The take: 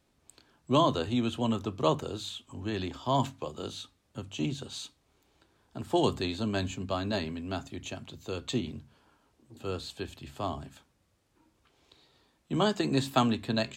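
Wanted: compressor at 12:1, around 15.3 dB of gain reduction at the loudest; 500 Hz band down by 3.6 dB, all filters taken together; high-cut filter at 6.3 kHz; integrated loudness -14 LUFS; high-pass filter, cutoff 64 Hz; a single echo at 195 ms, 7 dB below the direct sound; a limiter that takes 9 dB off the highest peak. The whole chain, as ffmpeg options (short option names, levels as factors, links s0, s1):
-af "highpass=64,lowpass=6300,equalizer=f=500:t=o:g=-5,acompressor=threshold=0.0158:ratio=12,alimiter=level_in=2.66:limit=0.0631:level=0:latency=1,volume=0.376,aecho=1:1:195:0.447,volume=28.2"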